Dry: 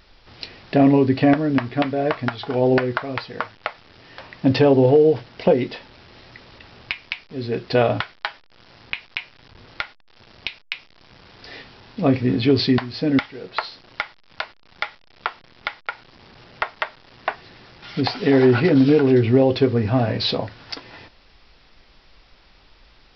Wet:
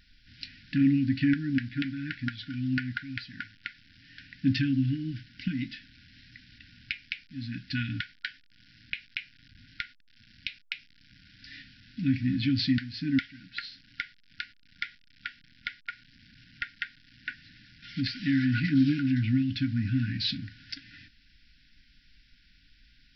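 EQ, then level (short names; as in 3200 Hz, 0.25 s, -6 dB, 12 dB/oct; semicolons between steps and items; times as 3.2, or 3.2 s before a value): brick-wall FIR band-stop 310–1400 Hz; -7.0 dB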